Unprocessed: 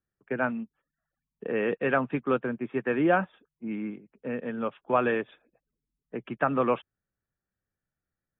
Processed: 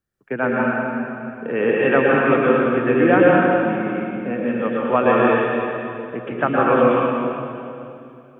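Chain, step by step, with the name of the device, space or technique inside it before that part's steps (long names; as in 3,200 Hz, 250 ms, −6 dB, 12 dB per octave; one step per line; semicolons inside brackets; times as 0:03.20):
stairwell (convolution reverb RT60 2.7 s, pre-delay 110 ms, DRR −5 dB)
level +5 dB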